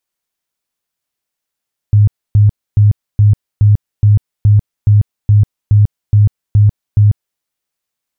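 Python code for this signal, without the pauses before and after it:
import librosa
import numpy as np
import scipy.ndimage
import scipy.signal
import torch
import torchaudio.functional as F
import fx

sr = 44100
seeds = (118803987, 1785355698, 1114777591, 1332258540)

y = fx.tone_burst(sr, hz=104.0, cycles=15, every_s=0.42, bursts=13, level_db=-4.0)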